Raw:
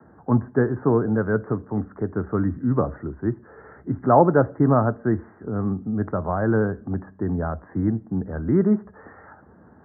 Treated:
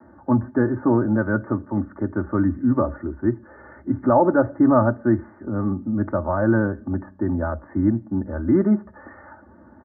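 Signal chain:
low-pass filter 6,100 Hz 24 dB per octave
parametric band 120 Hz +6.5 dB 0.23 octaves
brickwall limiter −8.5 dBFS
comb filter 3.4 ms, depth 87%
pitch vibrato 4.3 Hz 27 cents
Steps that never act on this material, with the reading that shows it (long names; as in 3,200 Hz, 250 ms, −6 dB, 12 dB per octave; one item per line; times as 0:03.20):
low-pass filter 6,100 Hz: nothing at its input above 1,700 Hz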